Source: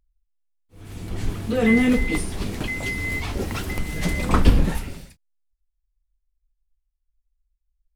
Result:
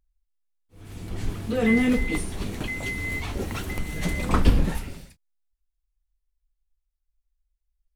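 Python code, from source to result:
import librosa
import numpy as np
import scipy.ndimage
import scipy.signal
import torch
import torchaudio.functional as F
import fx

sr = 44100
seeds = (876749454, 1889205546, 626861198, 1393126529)

y = fx.notch(x, sr, hz=5000.0, q=11.0, at=(2.01, 4.27))
y = y * 10.0 ** (-3.0 / 20.0)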